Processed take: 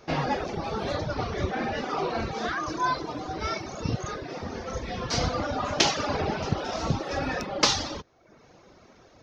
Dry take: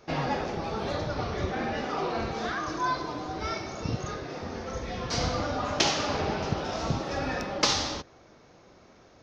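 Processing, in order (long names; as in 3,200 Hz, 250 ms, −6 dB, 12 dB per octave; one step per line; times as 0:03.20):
reverb reduction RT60 0.7 s
level +3 dB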